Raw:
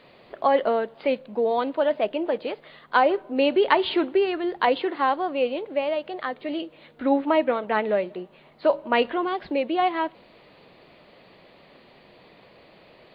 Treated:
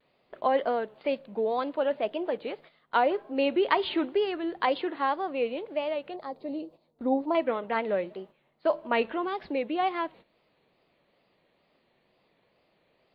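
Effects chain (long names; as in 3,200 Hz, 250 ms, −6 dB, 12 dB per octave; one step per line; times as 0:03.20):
tape wow and flutter 94 cents
noise gate −43 dBFS, range −12 dB
0:06.16–0:07.35: flat-topped bell 2,100 Hz −14.5 dB
level −5 dB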